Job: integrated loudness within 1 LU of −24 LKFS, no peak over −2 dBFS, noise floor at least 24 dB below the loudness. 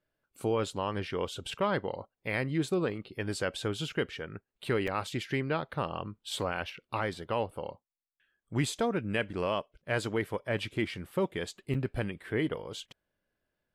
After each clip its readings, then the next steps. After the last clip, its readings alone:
number of dropouts 2; longest dropout 5.5 ms; integrated loudness −33.5 LKFS; sample peak −17.5 dBFS; target loudness −24.0 LKFS
→ repair the gap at 0:04.87/0:11.74, 5.5 ms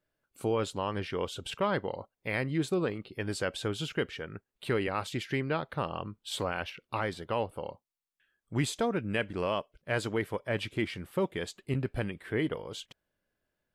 number of dropouts 0; integrated loudness −33.5 LKFS; sample peak −17.5 dBFS; target loudness −24.0 LKFS
→ level +9.5 dB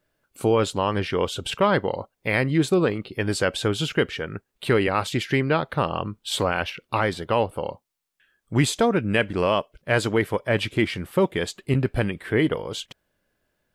integrated loudness −24.0 LKFS; sample peak −8.0 dBFS; background noise floor −78 dBFS

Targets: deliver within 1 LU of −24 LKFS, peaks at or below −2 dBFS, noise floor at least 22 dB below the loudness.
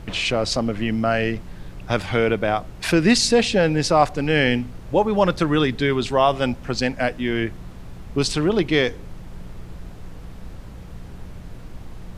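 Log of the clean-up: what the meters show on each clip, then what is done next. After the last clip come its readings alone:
mains hum 60 Hz; hum harmonics up to 180 Hz; level of the hum −39 dBFS; background noise floor −38 dBFS; target noise floor −43 dBFS; integrated loudness −20.5 LKFS; sample peak −3.0 dBFS; target loudness −24.0 LKFS
→ hum removal 60 Hz, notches 3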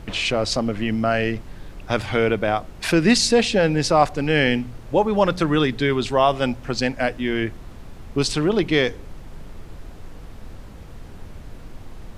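mains hum none found; background noise floor −39 dBFS; target noise floor −43 dBFS
→ noise reduction from a noise print 6 dB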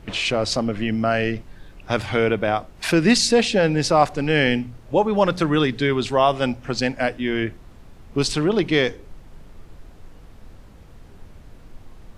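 background noise floor −45 dBFS; integrated loudness −21.0 LKFS; sample peak −3.0 dBFS; target loudness −24.0 LKFS
→ level −3 dB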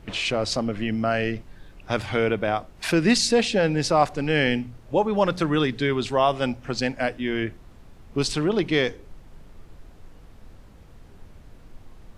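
integrated loudness −24.0 LKFS; sample peak −6.0 dBFS; background noise floor −48 dBFS

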